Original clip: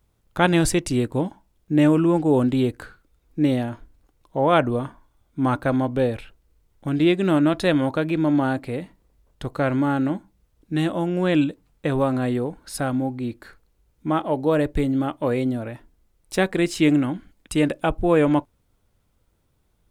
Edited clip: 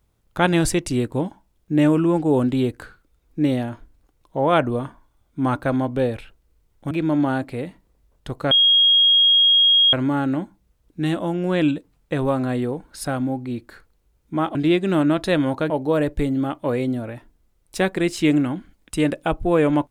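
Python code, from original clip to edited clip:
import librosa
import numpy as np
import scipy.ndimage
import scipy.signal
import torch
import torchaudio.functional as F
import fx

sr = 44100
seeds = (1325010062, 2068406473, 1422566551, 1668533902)

y = fx.edit(x, sr, fx.move(start_s=6.91, length_s=1.15, to_s=14.28),
    fx.insert_tone(at_s=9.66, length_s=1.42, hz=3270.0, db=-11.5), tone=tone)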